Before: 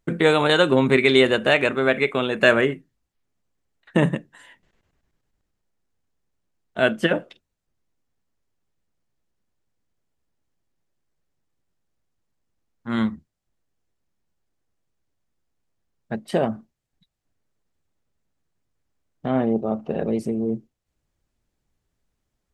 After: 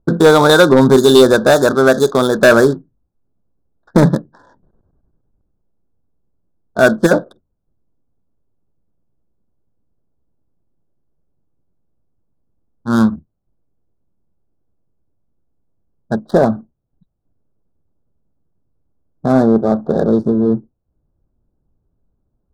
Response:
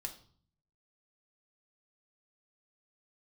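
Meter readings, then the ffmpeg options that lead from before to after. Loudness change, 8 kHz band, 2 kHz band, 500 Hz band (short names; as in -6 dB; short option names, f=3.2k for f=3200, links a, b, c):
+8.5 dB, n/a, +4.5 dB, +9.5 dB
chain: -af "adynamicsmooth=sensitivity=7:basefreq=680,asuperstop=centerf=2400:order=12:qfactor=1.3,aeval=exprs='0.596*sin(PI/2*1.58*val(0)/0.596)':c=same,volume=3dB"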